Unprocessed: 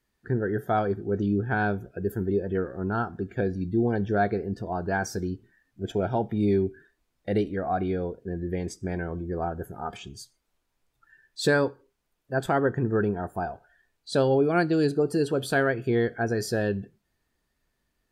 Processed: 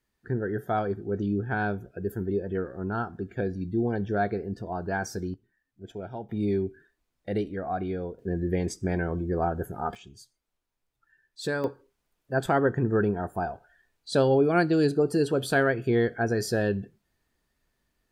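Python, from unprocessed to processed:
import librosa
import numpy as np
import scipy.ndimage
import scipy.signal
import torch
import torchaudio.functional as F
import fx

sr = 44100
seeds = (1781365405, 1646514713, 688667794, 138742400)

y = fx.gain(x, sr, db=fx.steps((0.0, -2.5), (5.34, -11.0), (6.29, -3.5), (8.19, 3.0), (9.95, -7.5), (11.64, 0.5)))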